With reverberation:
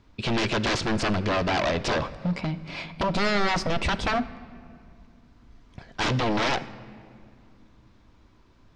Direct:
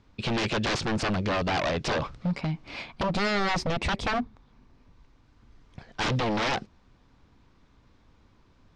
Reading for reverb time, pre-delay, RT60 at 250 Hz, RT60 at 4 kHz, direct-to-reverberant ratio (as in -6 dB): 2.3 s, 3 ms, 3.5 s, 1.3 s, 11.5 dB